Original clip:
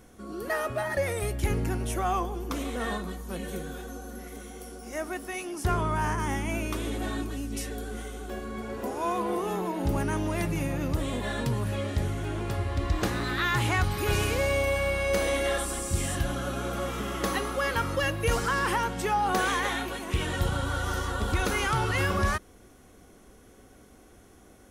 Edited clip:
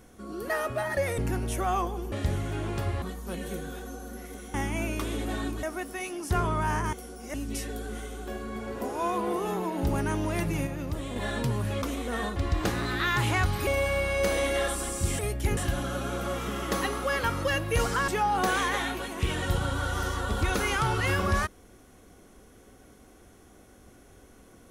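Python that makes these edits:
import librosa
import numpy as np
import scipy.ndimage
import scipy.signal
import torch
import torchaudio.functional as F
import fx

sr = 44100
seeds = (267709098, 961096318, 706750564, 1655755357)

y = fx.edit(x, sr, fx.move(start_s=1.18, length_s=0.38, to_s=16.09),
    fx.swap(start_s=2.5, length_s=0.54, other_s=11.84, other_length_s=0.9),
    fx.swap(start_s=4.56, length_s=0.41, other_s=6.27, other_length_s=1.09),
    fx.clip_gain(start_s=10.69, length_s=0.49, db=-4.5),
    fx.cut(start_s=14.05, length_s=0.52),
    fx.cut(start_s=18.6, length_s=0.39), tone=tone)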